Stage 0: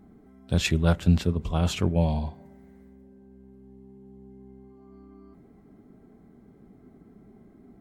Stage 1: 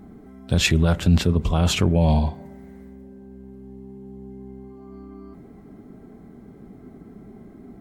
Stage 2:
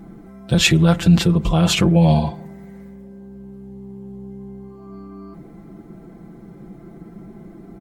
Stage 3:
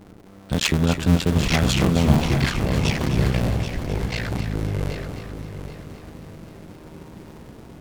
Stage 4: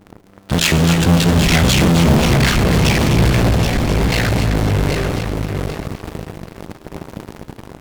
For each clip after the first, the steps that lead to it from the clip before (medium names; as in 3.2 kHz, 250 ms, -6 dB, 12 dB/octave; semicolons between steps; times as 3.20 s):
peak limiter -16.5 dBFS, peak gain reduction 9 dB; trim +9 dB
comb 5.9 ms, depth 82%; trim +2.5 dB
cycle switcher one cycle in 2, muted; ever faster or slower copies 717 ms, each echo -4 st, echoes 2; multi-head delay 260 ms, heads first and third, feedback 46%, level -10 dB; trim -3 dB
feedback comb 56 Hz, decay 1.5 s, harmonics all, mix 60%; in parallel at -6 dB: fuzz box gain 38 dB, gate -44 dBFS; on the sum: trim +5 dB